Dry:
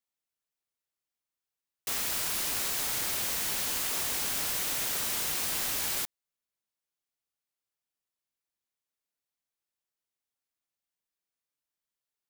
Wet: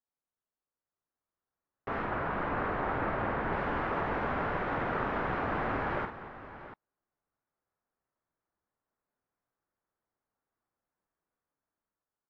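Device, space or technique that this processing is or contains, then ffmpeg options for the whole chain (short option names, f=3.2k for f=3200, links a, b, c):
action camera in a waterproof case: -filter_complex "[0:a]asettb=1/sr,asplit=3[a][b][c];[a]atrim=end=2.054[d];[b]atrim=start=2.05:end=3.53,asetpts=PTS-STARTPTS,afade=t=in:d=0.004:c=qsin,afade=t=out:st=1.476:d=0.004:c=qsin,aemphasis=mode=reproduction:type=50fm[e];[c]atrim=start=3.526[f];[d][e]acrossfade=d=0.004:c1=hsin:c2=qsin[g];[g][f]acrossfade=d=0.004:c1=qsin:c2=hsin,lowpass=f=1.5k:w=0.5412,lowpass=f=1.5k:w=1.3066,aecho=1:1:49|227|687:0.422|0.158|0.211,dynaudnorm=f=420:g=7:m=10dB" -ar 48000 -c:a aac -b:a 64k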